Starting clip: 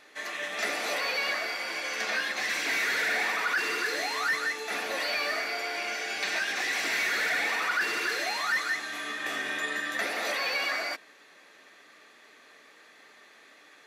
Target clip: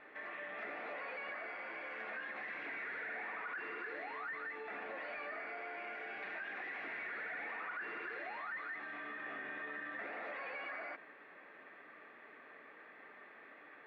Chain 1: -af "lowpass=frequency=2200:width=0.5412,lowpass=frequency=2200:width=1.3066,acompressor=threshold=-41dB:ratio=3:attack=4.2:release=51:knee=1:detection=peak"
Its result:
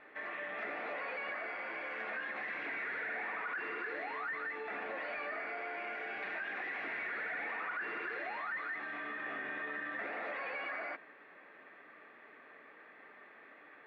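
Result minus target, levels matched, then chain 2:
downward compressor: peak gain reduction −4 dB
-af "lowpass=frequency=2200:width=0.5412,lowpass=frequency=2200:width=1.3066,acompressor=threshold=-47dB:ratio=3:attack=4.2:release=51:knee=1:detection=peak"

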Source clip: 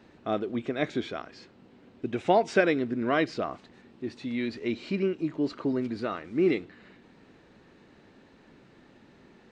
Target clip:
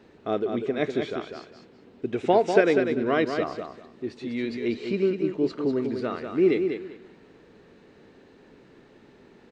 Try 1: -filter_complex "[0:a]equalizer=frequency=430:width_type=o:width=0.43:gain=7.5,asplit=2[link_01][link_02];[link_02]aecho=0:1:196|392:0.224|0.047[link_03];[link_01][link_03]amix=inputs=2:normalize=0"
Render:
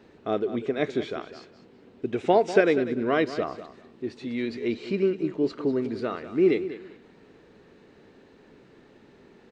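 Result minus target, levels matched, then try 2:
echo-to-direct −6.5 dB
-filter_complex "[0:a]equalizer=frequency=430:width_type=o:width=0.43:gain=7.5,asplit=2[link_01][link_02];[link_02]aecho=0:1:196|392|588:0.473|0.0994|0.0209[link_03];[link_01][link_03]amix=inputs=2:normalize=0"

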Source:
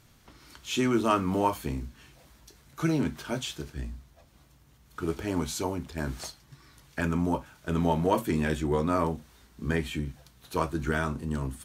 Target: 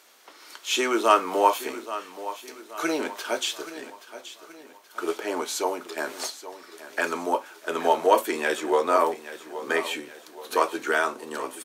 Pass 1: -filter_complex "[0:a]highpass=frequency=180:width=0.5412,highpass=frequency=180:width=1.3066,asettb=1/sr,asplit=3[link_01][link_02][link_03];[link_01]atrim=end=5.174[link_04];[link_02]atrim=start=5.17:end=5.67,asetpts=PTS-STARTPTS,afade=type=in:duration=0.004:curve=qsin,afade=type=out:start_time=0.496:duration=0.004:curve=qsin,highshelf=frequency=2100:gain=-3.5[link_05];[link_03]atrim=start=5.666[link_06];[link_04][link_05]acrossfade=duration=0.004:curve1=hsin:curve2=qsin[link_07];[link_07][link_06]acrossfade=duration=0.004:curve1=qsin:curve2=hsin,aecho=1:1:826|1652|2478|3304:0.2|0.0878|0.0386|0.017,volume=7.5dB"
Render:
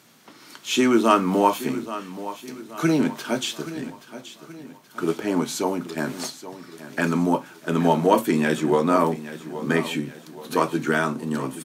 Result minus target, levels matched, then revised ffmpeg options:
250 Hz band +8.5 dB
-filter_complex "[0:a]highpass=frequency=400:width=0.5412,highpass=frequency=400:width=1.3066,asettb=1/sr,asplit=3[link_01][link_02][link_03];[link_01]atrim=end=5.174[link_04];[link_02]atrim=start=5.17:end=5.67,asetpts=PTS-STARTPTS,afade=type=in:duration=0.004:curve=qsin,afade=type=out:start_time=0.496:duration=0.004:curve=qsin,highshelf=frequency=2100:gain=-3.5[link_05];[link_03]atrim=start=5.666[link_06];[link_04][link_05]acrossfade=duration=0.004:curve1=hsin:curve2=qsin[link_07];[link_07][link_06]acrossfade=duration=0.004:curve1=qsin:curve2=hsin,aecho=1:1:826|1652|2478|3304:0.2|0.0878|0.0386|0.017,volume=7.5dB"

